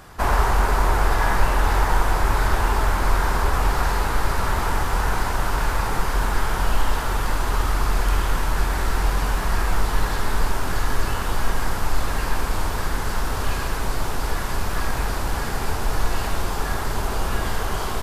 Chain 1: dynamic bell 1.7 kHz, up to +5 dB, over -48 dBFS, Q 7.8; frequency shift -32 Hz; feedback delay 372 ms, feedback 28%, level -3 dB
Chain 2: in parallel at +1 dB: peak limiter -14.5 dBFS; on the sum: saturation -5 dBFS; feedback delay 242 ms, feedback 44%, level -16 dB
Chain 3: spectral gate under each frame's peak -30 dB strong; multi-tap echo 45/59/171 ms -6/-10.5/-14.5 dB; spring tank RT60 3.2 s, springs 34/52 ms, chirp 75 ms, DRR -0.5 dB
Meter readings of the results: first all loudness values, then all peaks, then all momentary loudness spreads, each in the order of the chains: -23.0 LUFS, -20.0 LUFS, -21.5 LUFS; -3.0 dBFS, -5.5 dBFS, -2.5 dBFS; 5 LU, 4 LU, 6 LU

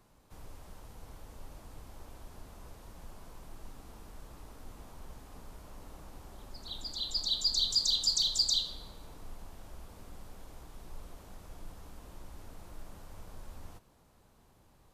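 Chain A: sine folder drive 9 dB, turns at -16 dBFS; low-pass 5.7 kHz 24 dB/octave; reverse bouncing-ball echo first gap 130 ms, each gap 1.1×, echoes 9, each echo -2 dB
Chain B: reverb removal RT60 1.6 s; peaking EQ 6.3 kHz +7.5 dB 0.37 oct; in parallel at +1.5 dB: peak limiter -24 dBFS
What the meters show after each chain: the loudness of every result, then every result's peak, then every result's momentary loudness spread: -18.5 LUFS, -23.5 LUFS; -6.0 dBFS, -10.0 dBFS; 21 LU, 15 LU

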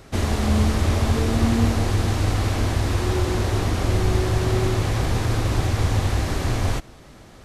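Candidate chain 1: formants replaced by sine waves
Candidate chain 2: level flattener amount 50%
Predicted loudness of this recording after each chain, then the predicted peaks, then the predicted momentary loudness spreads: -20.5 LUFS, -19.5 LUFS; -3.0 dBFS, -6.5 dBFS; 10 LU, 2 LU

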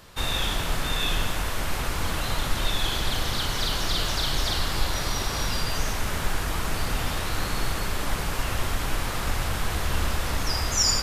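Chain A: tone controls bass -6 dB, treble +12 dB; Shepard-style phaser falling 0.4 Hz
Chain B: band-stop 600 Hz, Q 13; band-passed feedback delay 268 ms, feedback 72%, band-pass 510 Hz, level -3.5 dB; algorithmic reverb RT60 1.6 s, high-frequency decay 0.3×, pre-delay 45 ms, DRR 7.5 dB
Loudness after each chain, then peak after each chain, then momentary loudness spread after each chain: -22.5 LUFS, -26.5 LUFS; -1.0 dBFS, -8.5 dBFS; 5 LU, 3 LU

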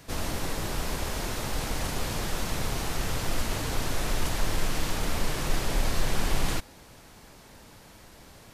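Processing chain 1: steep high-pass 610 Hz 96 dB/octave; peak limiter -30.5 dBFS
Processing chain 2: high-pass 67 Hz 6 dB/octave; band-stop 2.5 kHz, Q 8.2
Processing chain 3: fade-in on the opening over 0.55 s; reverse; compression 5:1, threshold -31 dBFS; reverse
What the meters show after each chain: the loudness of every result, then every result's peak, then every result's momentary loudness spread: -38.0 LUFS, -32.0 LUFS, -38.0 LUFS; -30.5 dBFS, -17.5 dBFS, -22.0 dBFS; 15 LU, 20 LU, 14 LU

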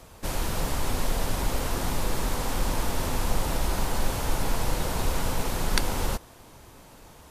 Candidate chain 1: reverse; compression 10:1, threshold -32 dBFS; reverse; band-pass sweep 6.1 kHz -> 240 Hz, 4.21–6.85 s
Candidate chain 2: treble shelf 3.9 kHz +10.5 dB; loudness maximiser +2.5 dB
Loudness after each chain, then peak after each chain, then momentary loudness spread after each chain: -51.5 LUFS, -23.5 LUFS; -33.0 dBFS, -1.0 dBFS; 10 LU, 20 LU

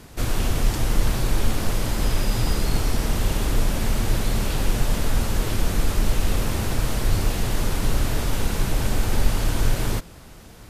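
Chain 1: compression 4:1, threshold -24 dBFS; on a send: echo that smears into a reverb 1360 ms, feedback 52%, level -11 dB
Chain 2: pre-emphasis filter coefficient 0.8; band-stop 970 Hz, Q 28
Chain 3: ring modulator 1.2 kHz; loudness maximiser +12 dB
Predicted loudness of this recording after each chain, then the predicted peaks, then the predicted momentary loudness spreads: -31.5 LUFS, -32.5 LUFS, -11.0 LUFS; -14.5 dBFS, -17.5 dBFS, -1.0 dBFS; 2 LU, 1 LU, 1 LU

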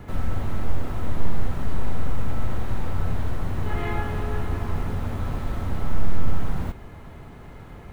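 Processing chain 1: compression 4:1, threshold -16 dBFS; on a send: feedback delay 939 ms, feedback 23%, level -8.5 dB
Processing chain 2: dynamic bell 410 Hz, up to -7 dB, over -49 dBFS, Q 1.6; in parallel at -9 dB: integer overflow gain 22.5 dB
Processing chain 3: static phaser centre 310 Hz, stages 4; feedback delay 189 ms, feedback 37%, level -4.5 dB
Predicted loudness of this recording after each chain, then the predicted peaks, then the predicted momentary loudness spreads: -31.0 LUFS, -30.0 LUFS, -33.0 LUFS; -11.0 dBFS, -6.5 dBFS, -3.0 dBFS; 11 LU, 12 LU, 10 LU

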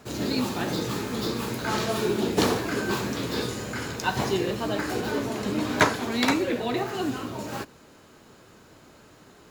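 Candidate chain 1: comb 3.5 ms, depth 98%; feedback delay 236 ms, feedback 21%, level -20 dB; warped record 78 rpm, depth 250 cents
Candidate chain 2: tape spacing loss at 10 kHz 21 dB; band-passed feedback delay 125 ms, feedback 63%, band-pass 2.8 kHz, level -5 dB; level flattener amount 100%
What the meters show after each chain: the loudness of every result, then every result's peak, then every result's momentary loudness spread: -24.5 LUFS, -17.5 LUFS; -3.0 dBFS, -4.0 dBFS; 9 LU, 1 LU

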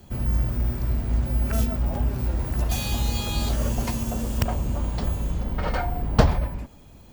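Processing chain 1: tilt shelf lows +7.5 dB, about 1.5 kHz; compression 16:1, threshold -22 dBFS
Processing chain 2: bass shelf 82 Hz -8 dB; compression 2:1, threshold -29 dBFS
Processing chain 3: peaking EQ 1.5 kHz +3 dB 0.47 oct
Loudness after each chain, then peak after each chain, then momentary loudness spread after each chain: -29.0 LUFS, -32.0 LUFS, -26.0 LUFS; -9.0 dBFS, -9.0 dBFS, -2.0 dBFS; 1 LU, 3 LU, 5 LU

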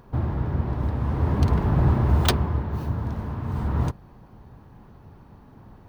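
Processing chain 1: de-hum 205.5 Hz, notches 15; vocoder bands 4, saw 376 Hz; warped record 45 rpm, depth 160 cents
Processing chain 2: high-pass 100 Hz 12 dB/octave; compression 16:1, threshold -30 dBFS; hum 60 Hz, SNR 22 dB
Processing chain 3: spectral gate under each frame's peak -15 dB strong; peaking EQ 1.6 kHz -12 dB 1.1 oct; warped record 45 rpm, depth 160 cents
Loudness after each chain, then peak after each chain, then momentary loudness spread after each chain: -27.0 LUFS, -35.5 LUFS, -25.5 LUFS; -8.5 dBFS, -16.0 dBFS, -9.5 dBFS; 9 LU, 16 LU, 9 LU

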